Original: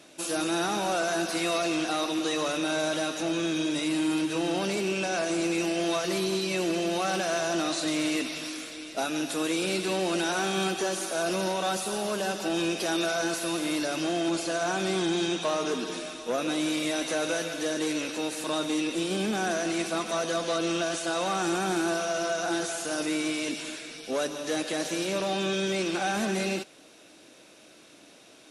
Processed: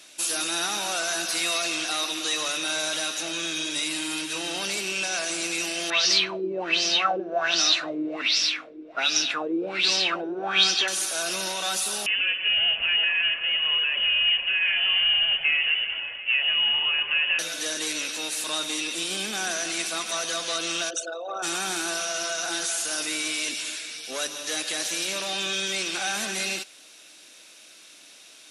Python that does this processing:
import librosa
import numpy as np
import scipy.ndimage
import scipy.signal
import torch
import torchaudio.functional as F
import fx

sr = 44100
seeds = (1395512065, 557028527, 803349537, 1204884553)

y = fx.filter_lfo_lowpass(x, sr, shape='sine', hz=1.3, low_hz=350.0, high_hz=5500.0, q=5.8, at=(5.9, 10.88))
y = fx.freq_invert(y, sr, carrier_hz=3200, at=(12.06, 17.39))
y = fx.envelope_sharpen(y, sr, power=3.0, at=(20.89, 21.42), fade=0.02)
y = fx.tilt_shelf(y, sr, db=-9.5, hz=1100.0)
y = y * 10.0 ** (-1.0 / 20.0)